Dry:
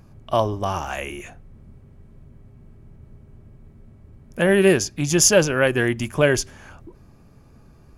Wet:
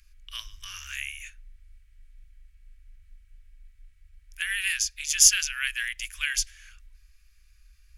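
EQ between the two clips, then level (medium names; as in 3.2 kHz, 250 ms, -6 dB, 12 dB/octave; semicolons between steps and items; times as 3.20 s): inverse Chebyshev band-stop 120–830 Hz, stop band 50 dB; 0.0 dB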